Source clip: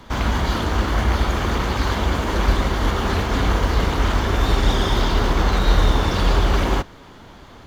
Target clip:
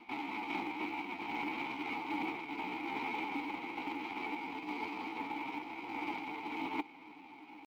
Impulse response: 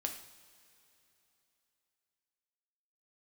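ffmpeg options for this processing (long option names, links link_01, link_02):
-filter_complex "[0:a]equalizer=frequency=890:width=0.33:gain=-5.5,bandreject=frequency=360:width=12,aecho=1:1:1.7:0.42,areverse,acompressor=threshold=-21dB:ratio=16,areverse,highpass=frequency=300:width_type=q:width=0.5412,highpass=frequency=300:width_type=q:width=1.307,lowpass=frequency=2900:width_type=q:width=0.5176,lowpass=frequency=2900:width_type=q:width=0.7071,lowpass=frequency=2900:width_type=q:width=1.932,afreqshift=-75,aeval=exprs='max(val(0),0)':channel_layout=same,asetrate=60591,aresample=44100,atempo=0.727827,asplit=3[link_01][link_02][link_03];[link_01]bandpass=frequency=300:width_type=q:width=8,volume=0dB[link_04];[link_02]bandpass=frequency=870:width_type=q:width=8,volume=-6dB[link_05];[link_03]bandpass=frequency=2240:width_type=q:width=8,volume=-9dB[link_06];[link_04][link_05][link_06]amix=inputs=3:normalize=0,acrusher=bits=9:mode=log:mix=0:aa=0.000001,volume=16dB"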